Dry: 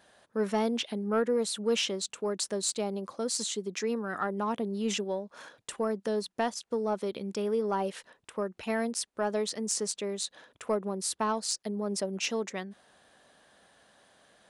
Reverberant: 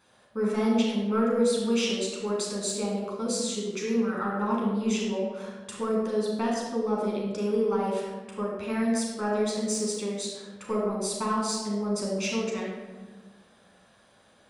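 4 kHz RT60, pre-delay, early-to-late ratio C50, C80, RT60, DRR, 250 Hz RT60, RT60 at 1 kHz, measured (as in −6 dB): 0.75 s, 10 ms, 0.5 dB, 3.0 dB, 1.3 s, −3.5 dB, 2.0 s, 1.2 s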